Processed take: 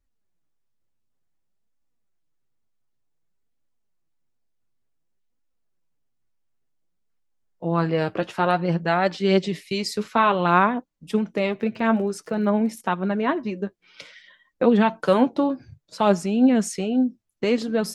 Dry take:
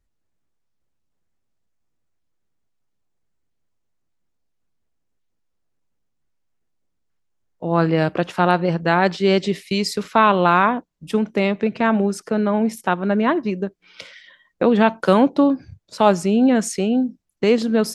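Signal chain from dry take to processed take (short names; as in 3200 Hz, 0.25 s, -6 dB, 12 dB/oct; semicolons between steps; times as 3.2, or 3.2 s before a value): flange 0.55 Hz, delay 3.3 ms, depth 6.2 ms, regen +44%; 11.46–12.85 crackle 36/s -41 dBFS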